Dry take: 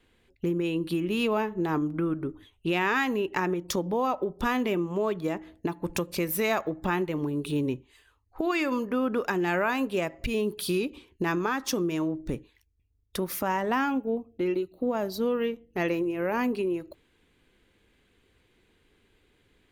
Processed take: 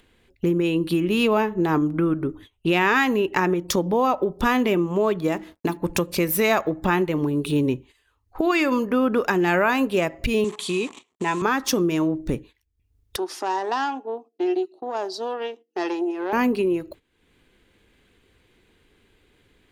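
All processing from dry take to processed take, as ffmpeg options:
-filter_complex "[0:a]asettb=1/sr,asplit=3[a][b][c];[a]atrim=end=5.324[d];[b]atrim=start=5.32:end=5.77,asetpts=PTS-STARTPTS,afade=t=in:d=0.004:c=qsin,afade=t=out:st=0.446:d=0.004:c=qsin,highshelf=f=4.6k:g=9.5,bandreject=f=50:t=h:w=6,bandreject=f=100:t=h:w=6,bandreject=f=150:t=h:w=6,bandreject=f=200:t=h:w=6,bandreject=f=250:t=h:w=6,bandreject=f=300:t=h:w=6,bandreject=f=350:t=h:w=6,aeval=exprs='sgn(val(0))*max(abs(val(0))-0.00119,0)':c=same[e];[c]atrim=start=5.766[f];[d][e]acrossfade=d=0.004:c1=hsin:c2=qsin[g];[g][f]acrossfade=d=0.004:c1=qsin:c2=hsin,asettb=1/sr,asplit=3[h][i][j];[h]atrim=end=10.444[k];[i]atrim=start=10.44:end=11.42,asetpts=PTS-STARTPTS,afade=t=in:d=0.004:c=qsin,afade=t=out:st=0.976:d=0.004:c=qsin,asuperstop=centerf=1200:order=8:qfactor=7.2,acrusher=bits=8:dc=4:mix=0:aa=0.000001,highpass=230,equalizer=f=310:t=q:w=4:g=-8,equalizer=f=570:t=q:w=4:g=-8,equalizer=f=1.1k:t=q:w=4:g=9,equalizer=f=1.5k:t=q:w=4:g=-10,equalizer=f=5k:t=q:w=4:g=-10,equalizer=f=7.4k:t=q:w=4:g=7,lowpass=f=8.2k:w=0.5412,lowpass=f=8.2k:w=1.3066[l];[j]atrim=start=11.416[m];[k][l]acrossfade=d=0.004:c1=hsin:c2=qsin[n];[n][m]acrossfade=d=0.004:c1=qsin:c2=hsin,asettb=1/sr,asplit=3[o][p][q];[o]atrim=end=13.164[r];[p]atrim=start=13.16:end=16.33,asetpts=PTS-STARTPTS,afade=t=in:d=0.004:c=qsin,afade=t=out:st=3.166:d=0.004:c=qsin,aeval=exprs='(tanh(8.91*val(0)+0.65)-tanh(0.65))/8.91':c=same,highpass=f=360:w=0.5412,highpass=f=360:w=1.3066,equalizer=f=360:t=q:w=4:g=6,equalizer=f=530:t=q:w=4:g=-10,equalizer=f=810:t=q:w=4:g=5,equalizer=f=1.3k:t=q:w=4:g=-4,equalizer=f=2.2k:t=q:w=4:g=-9,equalizer=f=5.1k:t=q:w=4:g=6,lowpass=f=8.3k:w=0.5412,lowpass=f=8.3k:w=1.3066[s];[q]atrim=start=16.326[t];[r][s]acrossfade=d=0.004:c1=hsin:c2=qsin[u];[u][t]acrossfade=d=0.004:c1=qsin:c2=hsin,acompressor=mode=upward:threshold=-42dB:ratio=2.5,agate=range=-13dB:threshold=-49dB:ratio=16:detection=peak,volume=6.5dB"

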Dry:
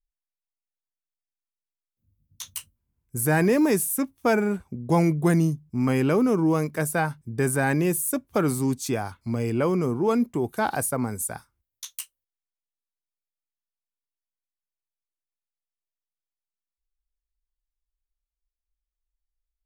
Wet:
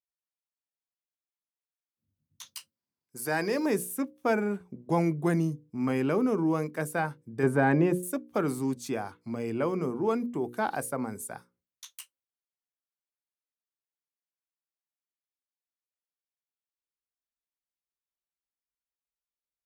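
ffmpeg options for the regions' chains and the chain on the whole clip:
-filter_complex "[0:a]asettb=1/sr,asplit=3[a][b][c];[a]atrim=end=2.464[d];[b]atrim=start=2.46:end=3.66,asetpts=PTS-STARTPTS,afade=t=in:d=0.004:c=qsin,afade=t=out:st=1.196:d=0.004:c=qsin,highpass=f=390:p=1,equalizer=f=4.8k:t=o:w=0.4:g=12.5[e];[c]atrim=start=3.656[f];[d][e]acrossfade=d=0.004:c1=hsin:c2=qsin[g];[g][f]acrossfade=d=0.004:c1=qsin:c2=hsin,asettb=1/sr,asplit=3[h][i][j];[h]atrim=end=7.434[k];[i]atrim=start=7.43:end=8.03,asetpts=PTS-STARTPTS,afade=t=in:d=0.004:c=qsin,afade=t=out:st=0.596:d=0.004:c=qsin,lowpass=f=1.3k:p=1,agate=range=-33dB:threshold=-40dB:ratio=3:release=100:detection=peak,acontrast=73[l];[j]atrim=start=8.026[m];[k][l]acrossfade=d=0.004:c1=hsin:c2=qsin[n];[n][m]acrossfade=d=0.004:c1=qsin:c2=hsin,highpass=160,highshelf=f=4.3k:g=-7.5,bandreject=f=60:t=h:w=6,bandreject=f=120:t=h:w=6,bandreject=f=180:t=h:w=6,bandreject=f=240:t=h:w=6,bandreject=f=300:t=h:w=6,bandreject=f=360:t=h:w=6,bandreject=f=420:t=h:w=6,bandreject=f=480:t=h:w=6,bandreject=f=540:t=h:w=6,volume=-4dB"

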